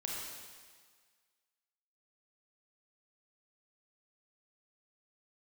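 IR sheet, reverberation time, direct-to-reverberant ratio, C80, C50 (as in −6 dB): 1.6 s, −3.0 dB, 1.0 dB, −1.0 dB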